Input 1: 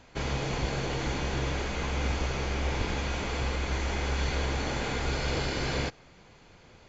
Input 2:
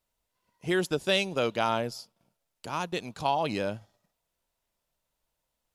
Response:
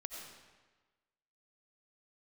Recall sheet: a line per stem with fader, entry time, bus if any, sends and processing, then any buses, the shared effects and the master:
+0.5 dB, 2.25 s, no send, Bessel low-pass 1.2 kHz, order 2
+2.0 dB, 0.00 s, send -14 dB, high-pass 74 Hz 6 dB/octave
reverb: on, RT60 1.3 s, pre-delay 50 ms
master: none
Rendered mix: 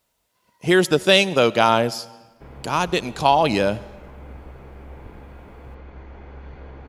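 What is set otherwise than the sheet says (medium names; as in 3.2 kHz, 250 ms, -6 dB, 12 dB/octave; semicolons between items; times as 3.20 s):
stem 1 +0.5 dB -> -9.5 dB; stem 2 +2.0 dB -> +10.0 dB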